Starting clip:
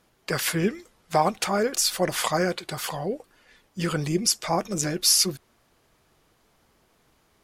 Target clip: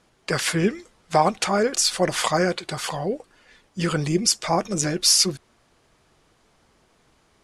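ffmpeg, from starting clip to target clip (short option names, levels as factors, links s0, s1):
-af "lowpass=f=10000:w=0.5412,lowpass=f=10000:w=1.3066,volume=1.41"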